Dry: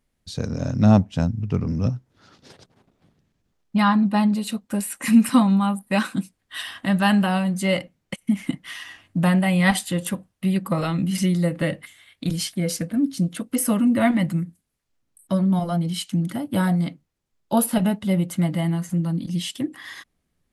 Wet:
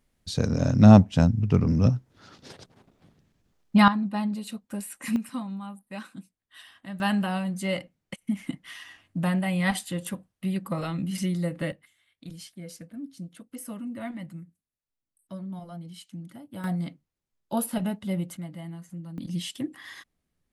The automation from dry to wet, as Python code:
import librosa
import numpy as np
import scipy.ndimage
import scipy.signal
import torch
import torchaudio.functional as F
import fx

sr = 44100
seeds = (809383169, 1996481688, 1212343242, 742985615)

y = fx.gain(x, sr, db=fx.steps((0.0, 2.0), (3.88, -9.0), (5.16, -17.0), (7.0, -7.0), (11.72, -17.0), (16.64, -8.0), (18.37, -16.0), (19.18, -5.5)))